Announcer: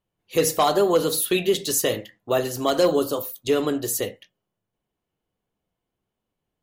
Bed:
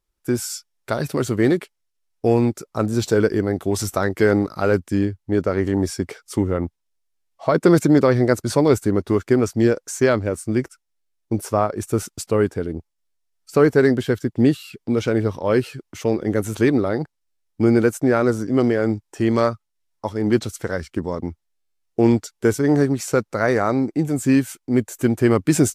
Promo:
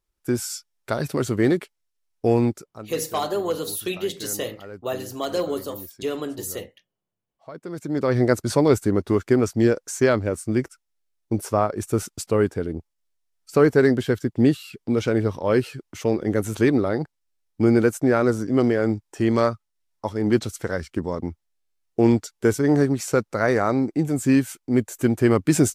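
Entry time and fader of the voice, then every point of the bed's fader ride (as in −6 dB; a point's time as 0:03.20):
2.55 s, −6.0 dB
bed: 0:02.51 −2 dB
0:02.89 −21 dB
0:07.69 −21 dB
0:08.18 −1.5 dB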